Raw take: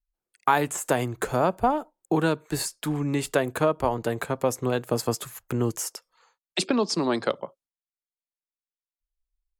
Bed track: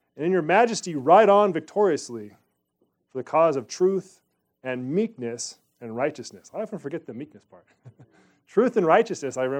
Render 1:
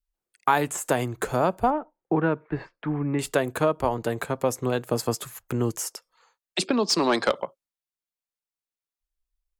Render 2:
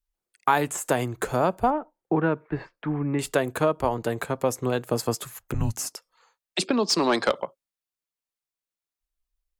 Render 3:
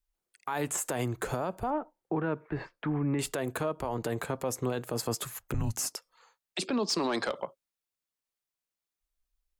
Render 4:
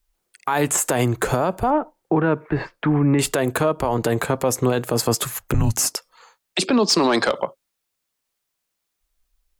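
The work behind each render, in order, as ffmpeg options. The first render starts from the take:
ffmpeg -i in.wav -filter_complex "[0:a]asettb=1/sr,asplit=3[link_01][link_02][link_03];[link_01]atrim=end=1.704[link_04];[link_02]atrim=start=1.7:end=3.19,asetpts=PTS-STARTPTS,afade=type=in:duration=0.004:curve=qsin,afade=type=out:start_time=1.486:duration=0.004:curve=qsin,lowpass=frequency=2200:width=0.5412,lowpass=frequency=2200:width=1.3066[link_05];[link_03]atrim=start=3.186[link_06];[link_04][link_05]acrossfade=duration=0.004:curve1=hsin:curve2=qsin[link_07];[link_07][link_06]acrossfade=duration=0.004:curve1=qsin:curve2=hsin,asplit=3[link_08][link_09][link_10];[link_08]afade=type=out:start_time=6.87:duration=0.02[link_11];[link_09]asplit=2[link_12][link_13];[link_13]highpass=frequency=720:poles=1,volume=14dB,asoftclip=type=tanh:threshold=-10.5dB[link_14];[link_12][link_14]amix=inputs=2:normalize=0,lowpass=frequency=7800:poles=1,volume=-6dB,afade=type=in:start_time=6.87:duration=0.02,afade=type=out:start_time=7.44:duration=0.02[link_15];[link_10]afade=type=in:start_time=7.44:duration=0.02[link_16];[link_11][link_15][link_16]amix=inputs=3:normalize=0" out.wav
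ffmpeg -i in.wav -filter_complex "[0:a]asettb=1/sr,asplit=3[link_01][link_02][link_03];[link_01]atrim=end=5.544[link_04];[link_02]atrim=start=5.54:end=5.95,asetpts=PTS-STARTPTS,afade=type=in:duration=0.004:curve=qsin,afade=type=out:start_time=0.406:duration=0.004:curve=qsin,afreqshift=-220[link_05];[link_03]atrim=start=5.946[link_06];[link_04][link_05]acrossfade=duration=0.004:curve1=hsin:curve2=qsin[link_07];[link_07][link_06]acrossfade=duration=0.004:curve1=qsin:curve2=hsin" out.wav
ffmpeg -i in.wav -af "acompressor=threshold=-23dB:ratio=4,alimiter=limit=-22dB:level=0:latency=1:release=23" out.wav
ffmpeg -i in.wav -af "volume=12dB" out.wav

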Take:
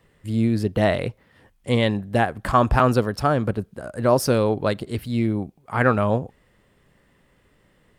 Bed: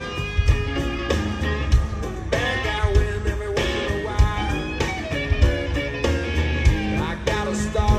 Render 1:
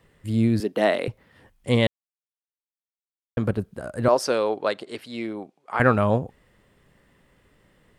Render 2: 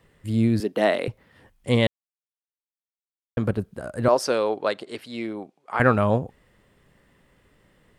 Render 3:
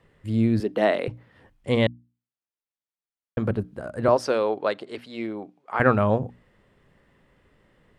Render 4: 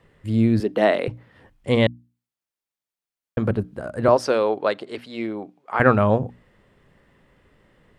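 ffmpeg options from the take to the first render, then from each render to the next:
ffmpeg -i in.wav -filter_complex "[0:a]asettb=1/sr,asplit=3[link_01][link_02][link_03];[link_01]atrim=end=0.604[link_04];[link_02]atrim=start=0.6:end=1.08,asetpts=PTS-STARTPTS,afade=type=in:duration=0.004:curve=qsin,afade=type=out:start_time=0.476:duration=0.004:curve=qsin,highpass=frequency=240:width=0.5412,highpass=frequency=240:width=1.3066[link_05];[link_03]atrim=start=1.076[link_06];[link_04][link_05]acrossfade=duration=0.004:curve1=hsin:curve2=qsin[link_07];[link_07][link_06]acrossfade=duration=0.004:curve1=qsin:curve2=hsin,asettb=1/sr,asplit=3[link_08][link_09][link_10];[link_08]atrim=end=4.084[link_11];[link_09]atrim=start=4.08:end=5.8,asetpts=PTS-STARTPTS,afade=type=in:duration=0.004:curve=qsin,afade=type=out:start_time=1.716:duration=0.004:curve=qsin,highpass=420,lowpass=7300[link_12];[link_10]atrim=start=5.796[link_13];[link_11][link_12]acrossfade=duration=0.004:curve1=hsin:curve2=qsin[link_14];[link_14][link_13]acrossfade=duration=0.004:curve1=qsin:curve2=hsin,asplit=3[link_15][link_16][link_17];[link_15]atrim=end=1.87,asetpts=PTS-STARTPTS,afade=type=out:start_time=1.866:duration=0.004:curve=hsin[link_18];[link_16]atrim=start=1.87:end=3.37,asetpts=PTS-STARTPTS,volume=0[link_19];[link_17]atrim=start=3.37,asetpts=PTS-STARTPTS,afade=type=in:duration=0.004:curve=hsin[link_20];[link_18][link_19][link_20]concat=n=3:v=0:a=1" out.wav
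ffmpeg -i in.wav -af anull out.wav
ffmpeg -i in.wav -af "lowpass=frequency=3200:poles=1,bandreject=frequency=60:width_type=h:width=6,bandreject=frequency=120:width_type=h:width=6,bandreject=frequency=180:width_type=h:width=6,bandreject=frequency=240:width_type=h:width=6,bandreject=frequency=300:width_type=h:width=6" out.wav
ffmpeg -i in.wav -af "volume=3dB" out.wav

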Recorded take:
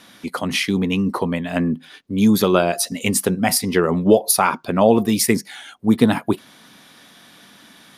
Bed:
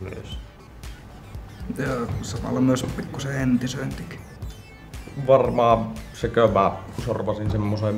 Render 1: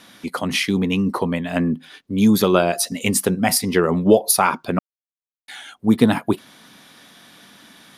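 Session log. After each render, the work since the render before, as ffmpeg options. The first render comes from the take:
ffmpeg -i in.wav -filter_complex "[0:a]asplit=3[link_01][link_02][link_03];[link_01]atrim=end=4.79,asetpts=PTS-STARTPTS,afade=type=out:start_time=4.786:duration=0.004:curve=hsin[link_04];[link_02]atrim=start=4.79:end=5.48,asetpts=PTS-STARTPTS,volume=0[link_05];[link_03]atrim=start=5.48,asetpts=PTS-STARTPTS,afade=type=in:duration=0.004:curve=hsin[link_06];[link_04][link_05][link_06]concat=n=3:v=0:a=1" out.wav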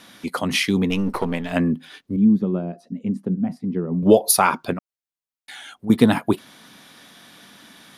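ffmpeg -i in.wav -filter_complex "[0:a]asettb=1/sr,asplit=3[link_01][link_02][link_03];[link_01]atrim=end=0.904[link_04];[link_02]atrim=start=0.9:end=1.52,asetpts=PTS-STARTPTS,afade=type=in:duration=0.004:curve=qsin,afade=type=out:start_time=0.616:duration=0.004:curve=qsin,aeval=exprs='if(lt(val(0),0),0.447*val(0),val(0))':channel_layout=same[link_05];[link_03]atrim=start=1.516[link_06];[link_04][link_05]acrossfade=duration=0.004:curve1=hsin:curve2=qsin[link_07];[link_07][link_06]acrossfade=duration=0.004:curve1=qsin:curve2=hsin,asettb=1/sr,asplit=3[link_08][link_09][link_10];[link_08]atrim=end=2.164[link_11];[link_09]atrim=start=2.16:end=4.03,asetpts=PTS-STARTPTS,afade=type=in:duration=0.004:curve=qsin,afade=type=out:start_time=1.866:duration=0.004:curve=qsin,bandpass=frequency=200:width_type=q:width=2[link_12];[link_10]atrim=start=4.026[link_13];[link_11][link_12]acrossfade=duration=0.004:curve1=hsin:curve2=qsin[link_14];[link_14][link_13]acrossfade=duration=0.004:curve1=qsin:curve2=hsin,asettb=1/sr,asplit=3[link_15][link_16][link_17];[link_15]atrim=end=4.734[link_18];[link_16]atrim=start=4.73:end=5.9,asetpts=PTS-STARTPTS,afade=type=in:duration=0.004:curve=qsin,afade=type=out:start_time=1.166:duration=0.004:curve=qsin,acompressor=threshold=-35dB:ratio=2:attack=3.2:release=140:knee=1:detection=peak[link_19];[link_17]atrim=start=5.896[link_20];[link_18][link_19]acrossfade=duration=0.004:curve1=hsin:curve2=qsin[link_21];[link_21][link_20]acrossfade=duration=0.004:curve1=qsin:curve2=hsin" out.wav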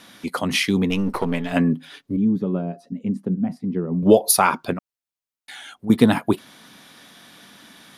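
ffmpeg -i in.wav -filter_complex "[0:a]asettb=1/sr,asplit=3[link_01][link_02][link_03];[link_01]atrim=end=1.264[link_04];[link_02]atrim=start=1.26:end=2.93,asetpts=PTS-STARTPTS,afade=type=in:duration=0.004:curve=qsin,afade=type=out:start_time=1.666:duration=0.004:curve=qsin,aecho=1:1:7.1:0.44,atrim=end_sample=73647[link_05];[link_03]atrim=start=2.926[link_06];[link_04][link_05]acrossfade=duration=0.004:curve1=hsin:curve2=qsin[link_07];[link_07][link_06]acrossfade=duration=0.004:curve1=qsin:curve2=hsin" out.wav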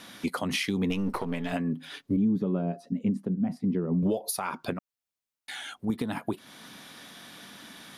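ffmpeg -i in.wav -af "acompressor=threshold=-20dB:ratio=6,alimiter=limit=-18dB:level=0:latency=1:release=350" out.wav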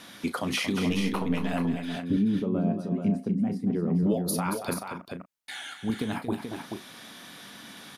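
ffmpeg -i in.wav -filter_complex "[0:a]asplit=2[link_01][link_02];[link_02]adelay=35,volume=-12dB[link_03];[link_01][link_03]amix=inputs=2:normalize=0,asplit=2[link_04][link_05];[link_05]aecho=0:1:230|432:0.355|0.473[link_06];[link_04][link_06]amix=inputs=2:normalize=0" out.wav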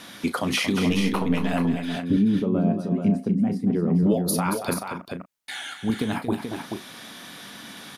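ffmpeg -i in.wav -af "volume=4.5dB" out.wav

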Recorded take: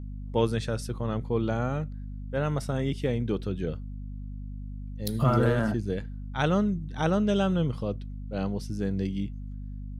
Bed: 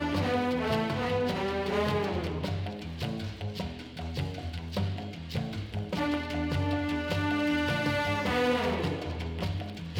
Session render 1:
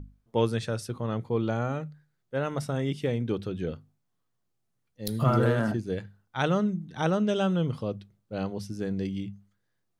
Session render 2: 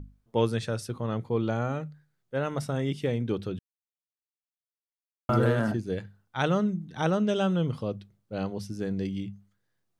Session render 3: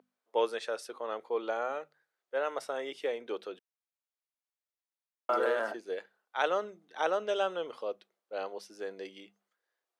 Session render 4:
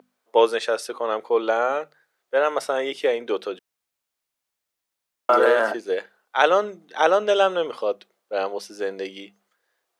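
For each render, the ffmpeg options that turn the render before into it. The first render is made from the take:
ffmpeg -i in.wav -af "bandreject=frequency=50:width_type=h:width=6,bandreject=frequency=100:width_type=h:width=6,bandreject=frequency=150:width_type=h:width=6,bandreject=frequency=200:width_type=h:width=6,bandreject=frequency=250:width_type=h:width=6" out.wav
ffmpeg -i in.wav -filter_complex "[0:a]asplit=3[link_01][link_02][link_03];[link_01]atrim=end=3.59,asetpts=PTS-STARTPTS,afade=type=out:start_time=3.586:duration=0.004:curve=hsin[link_04];[link_02]atrim=start=3.59:end=5.29,asetpts=PTS-STARTPTS,volume=0[link_05];[link_03]atrim=start=5.29,asetpts=PTS-STARTPTS,afade=type=in:duration=0.004:curve=hsin[link_06];[link_04][link_05][link_06]concat=n=3:v=0:a=1" out.wav
ffmpeg -i in.wav -af "highpass=frequency=450:width=0.5412,highpass=frequency=450:width=1.3066,highshelf=frequency=4200:gain=-7.5" out.wav
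ffmpeg -i in.wav -af "volume=12dB" out.wav

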